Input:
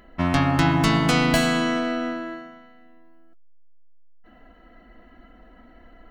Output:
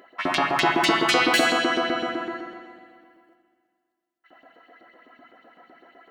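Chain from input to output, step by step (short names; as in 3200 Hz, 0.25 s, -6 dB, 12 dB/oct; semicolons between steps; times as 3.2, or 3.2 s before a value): LFO high-pass saw up 7.9 Hz 290–4300 Hz; on a send: tone controls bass +7 dB, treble -14 dB + reverb RT60 2.0 s, pre-delay 48 ms, DRR 7.5 dB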